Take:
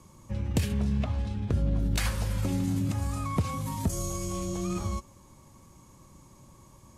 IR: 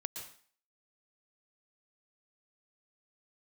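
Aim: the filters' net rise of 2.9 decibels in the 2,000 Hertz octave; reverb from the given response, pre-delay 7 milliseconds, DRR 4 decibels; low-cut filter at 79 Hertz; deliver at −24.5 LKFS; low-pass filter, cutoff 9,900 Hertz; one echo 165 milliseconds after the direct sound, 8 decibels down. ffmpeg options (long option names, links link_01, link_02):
-filter_complex "[0:a]highpass=79,lowpass=9900,equalizer=frequency=2000:width_type=o:gain=3.5,aecho=1:1:165:0.398,asplit=2[link_01][link_02];[1:a]atrim=start_sample=2205,adelay=7[link_03];[link_02][link_03]afir=irnorm=-1:irlink=0,volume=-3dB[link_04];[link_01][link_04]amix=inputs=2:normalize=0,volume=6dB"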